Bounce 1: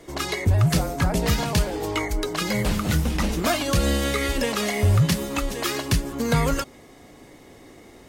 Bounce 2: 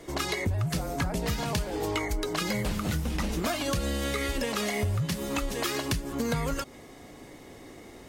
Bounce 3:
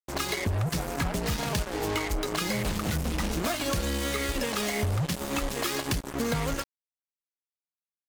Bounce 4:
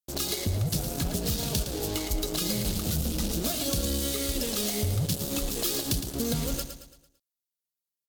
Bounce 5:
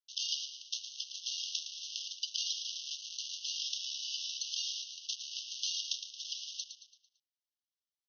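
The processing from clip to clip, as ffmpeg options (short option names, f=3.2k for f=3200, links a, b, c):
-af "acompressor=threshold=-26dB:ratio=6"
-af "acrusher=bits=4:mix=0:aa=0.5"
-filter_complex "[0:a]equalizer=f=1k:t=o:w=1:g=-10,equalizer=f=2k:t=o:w=1:g=-11,equalizer=f=4k:t=o:w=1:g=4,equalizer=f=16k:t=o:w=1:g=9,asplit=2[a][b];[b]aecho=0:1:112|224|336|448|560:0.355|0.156|0.0687|0.0302|0.0133[c];[a][c]amix=inputs=2:normalize=0"
-af "asuperpass=centerf=4500:order=20:qfactor=2.5,aeval=exprs='val(0)*sin(2*PI*900*n/s)':c=same,volume=3.5dB"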